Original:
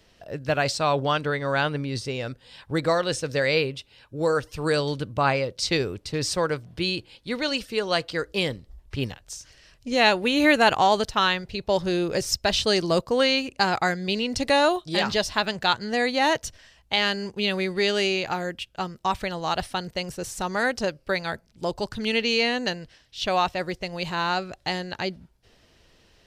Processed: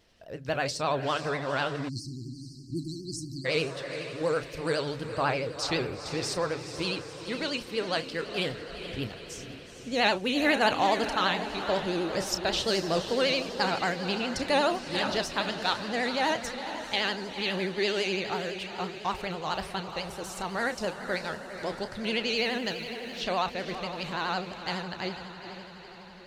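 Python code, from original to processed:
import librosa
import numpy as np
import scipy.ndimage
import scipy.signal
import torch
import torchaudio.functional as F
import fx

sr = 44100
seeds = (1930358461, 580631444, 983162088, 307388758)

y = fx.hum_notches(x, sr, base_hz=50, count=3)
y = fx.doubler(y, sr, ms=32.0, db=-11.0)
y = fx.echo_diffused(y, sr, ms=459, feedback_pct=59, wet_db=-9.0)
y = fx.spec_erase(y, sr, start_s=1.89, length_s=1.56, low_hz=380.0, high_hz=4100.0)
y = fx.backlash(y, sr, play_db=-41.5, at=(22.37, 23.2))
y = fx.vibrato(y, sr, rate_hz=12.0, depth_cents=94.0)
y = y * librosa.db_to_amplitude(-6.0)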